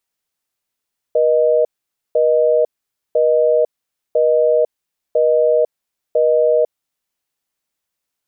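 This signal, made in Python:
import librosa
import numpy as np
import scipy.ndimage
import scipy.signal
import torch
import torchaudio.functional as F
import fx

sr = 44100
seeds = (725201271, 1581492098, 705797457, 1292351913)

y = fx.call_progress(sr, length_s=5.51, kind='busy tone', level_db=-13.5)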